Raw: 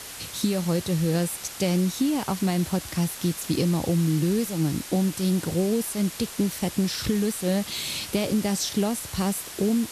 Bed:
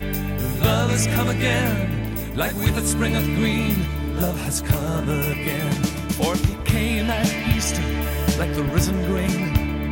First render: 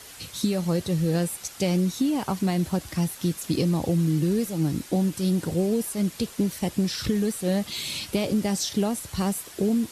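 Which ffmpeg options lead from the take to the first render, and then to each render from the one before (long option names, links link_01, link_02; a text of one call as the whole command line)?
ffmpeg -i in.wav -af "afftdn=noise_reduction=7:noise_floor=-39" out.wav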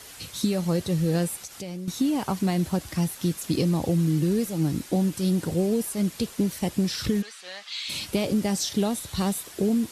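ffmpeg -i in.wav -filter_complex "[0:a]asettb=1/sr,asplit=3[link_01][link_02][link_03];[link_01]atrim=end=1.424[link_04];[link_02]atrim=start=1.42:end=1.88,asetpts=PTS-STARTPTS,afade=type=in:duration=0.004:curve=qsin,afade=type=out:start_time=0.456:duration=0.004:curve=qsin,acompressor=threshold=-36dB:ratio=3:attack=3.2:release=140:knee=1:detection=peak[link_05];[link_03]atrim=start=1.876[link_06];[link_04][link_05]acrossfade=duration=0.004:curve1=hsin:curve2=qsin[link_07];[link_07][link_06]acrossfade=duration=0.004:curve1=qsin:curve2=hsin,asplit=3[link_08][link_09][link_10];[link_08]afade=type=out:start_time=7.21:duration=0.02[link_11];[link_09]asuperpass=centerf=2600:order=4:qfactor=0.61,afade=type=in:start_time=7.21:duration=0.02,afade=type=out:start_time=7.88:duration=0.02[link_12];[link_10]afade=type=in:start_time=7.88:duration=0.02[link_13];[link_11][link_12][link_13]amix=inputs=3:normalize=0,asettb=1/sr,asplit=3[link_14][link_15][link_16];[link_14]atrim=end=8.784[link_17];[link_15]atrim=start=8.78:end=9.43,asetpts=PTS-STARTPTS,afade=type=in:duration=0.004:curve=qsin,afade=type=out:start_time=0.646:duration=0.004:curve=qsin,equalizer=frequency=3700:width=5.8:gain=9.5[link_18];[link_16]atrim=start=9.426[link_19];[link_17][link_18]acrossfade=duration=0.004:curve1=hsin:curve2=qsin[link_20];[link_20][link_19]acrossfade=duration=0.004:curve1=qsin:curve2=hsin" out.wav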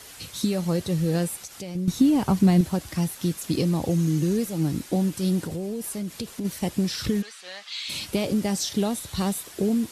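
ffmpeg -i in.wav -filter_complex "[0:a]asettb=1/sr,asplit=3[link_01][link_02][link_03];[link_01]atrim=end=1.754[link_04];[link_02]atrim=start=1.75:end=2.61,asetpts=PTS-STARTPTS,afade=type=in:duration=0.004:curve=qsin,afade=type=out:start_time=0.856:duration=0.004:curve=qsin,lowshelf=frequency=270:gain=11[link_05];[link_03]atrim=start=2.606[link_06];[link_04][link_05]acrossfade=duration=0.004:curve1=hsin:curve2=qsin[link_07];[link_07][link_06]acrossfade=duration=0.004:curve1=qsin:curve2=hsin,asettb=1/sr,asplit=3[link_08][link_09][link_10];[link_08]atrim=end=3.904[link_11];[link_09]atrim=start=3.9:end=4.37,asetpts=PTS-STARTPTS,afade=type=in:duration=0.004:curve=qsin,afade=type=out:start_time=0.466:duration=0.004:curve=qsin,equalizer=frequency=6400:width_type=o:width=0.2:gain=9[link_12];[link_10]atrim=start=4.366[link_13];[link_11][link_12]acrossfade=duration=0.004:curve1=hsin:curve2=qsin[link_14];[link_14][link_13]acrossfade=duration=0.004:curve1=qsin:curve2=hsin,asplit=3[link_15][link_16][link_17];[link_15]afade=type=out:start_time=5.43:duration=0.02[link_18];[link_16]acompressor=threshold=-27dB:ratio=6:attack=3.2:release=140:knee=1:detection=peak,afade=type=in:start_time=5.43:duration=0.02,afade=type=out:start_time=6.44:duration=0.02[link_19];[link_17]afade=type=in:start_time=6.44:duration=0.02[link_20];[link_18][link_19][link_20]amix=inputs=3:normalize=0" out.wav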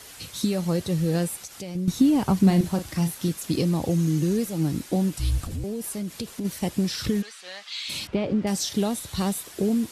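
ffmpeg -i in.wav -filter_complex "[0:a]asettb=1/sr,asplit=3[link_01][link_02][link_03];[link_01]atrim=end=2.434[link_04];[link_02]atrim=start=2.43:end=3.29,asetpts=PTS-STARTPTS,afade=type=in:duration=0.004:curve=qsin,afade=type=out:start_time=0.856:duration=0.004:curve=qsin,asplit=2[link_05][link_06];[link_06]adelay=36,volume=-9dB[link_07];[link_05][link_07]amix=inputs=2:normalize=0,atrim=end_sample=37926[link_08];[link_03]atrim=start=3.286[link_09];[link_04][link_08]acrossfade=duration=0.004:curve1=hsin:curve2=qsin[link_10];[link_10][link_09]acrossfade=duration=0.004:curve1=qsin:curve2=hsin,asettb=1/sr,asplit=3[link_11][link_12][link_13];[link_11]atrim=end=5.164[link_14];[link_12]atrim=start=5.16:end=5.64,asetpts=PTS-STARTPTS,afade=type=in:duration=0.004:curve=qsin,afade=type=out:start_time=0.476:duration=0.004:curve=qsin,afreqshift=-250[link_15];[link_13]atrim=start=5.636[link_16];[link_14][link_15]acrossfade=duration=0.004:curve1=hsin:curve2=qsin[link_17];[link_17][link_16]acrossfade=duration=0.004:curve1=qsin:curve2=hsin,asettb=1/sr,asplit=3[link_18][link_19][link_20];[link_18]atrim=end=8.074[link_21];[link_19]atrim=start=8.07:end=8.47,asetpts=PTS-STARTPTS,afade=type=in:duration=0.004:curve=qsin,afade=type=out:start_time=0.396:duration=0.004:curve=qsin,lowpass=2300[link_22];[link_20]atrim=start=8.466[link_23];[link_21][link_22]acrossfade=duration=0.004:curve1=hsin:curve2=qsin[link_24];[link_24][link_23]acrossfade=duration=0.004:curve1=qsin:curve2=hsin" out.wav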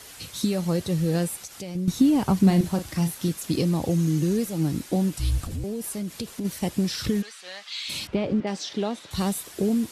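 ffmpeg -i in.wav -filter_complex "[0:a]asettb=1/sr,asplit=3[link_01][link_02][link_03];[link_01]atrim=end=8.404[link_04];[link_02]atrim=start=8.4:end=9.11,asetpts=PTS-STARTPTS,afade=type=in:duration=0.004:curve=qsin,afade=type=out:start_time=0.706:duration=0.004:curve=qsin,highpass=250,lowpass=4100[link_05];[link_03]atrim=start=9.106[link_06];[link_04][link_05]acrossfade=duration=0.004:curve1=hsin:curve2=qsin[link_07];[link_07][link_06]acrossfade=duration=0.004:curve1=qsin:curve2=hsin" out.wav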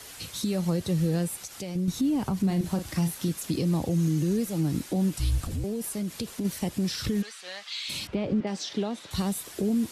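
ffmpeg -i in.wav -filter_complex "[0:a]alimiter=limit=-17.5dB:level=0:latency=1:release=131,acrossover=split=280[link_01][link_02];[link_02]acompressor=threshold=-32dB:ratio=2[link_03];[link_01][link_03]amix=inputs=2:normalize=0" out.wav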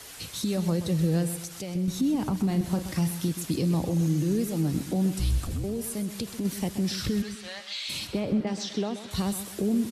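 ffmpeg -i in.wav -af "aecho=1:1:128|256|384|512:0.266|0.101|0.0384|0.0146" out.wav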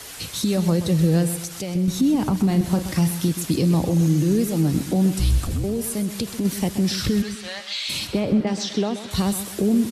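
ffmpeg -i in.wav -af "volume=6.5dB" out.wav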